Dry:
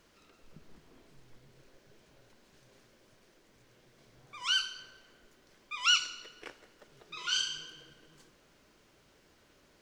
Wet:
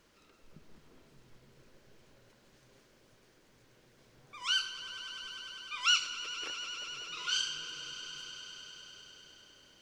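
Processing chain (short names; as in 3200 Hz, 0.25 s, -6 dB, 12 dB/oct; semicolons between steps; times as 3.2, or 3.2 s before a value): notch 700 Hz, Q 19; swelling echo 0.1 s, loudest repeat 5, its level -16 dB; gain -1.5 dB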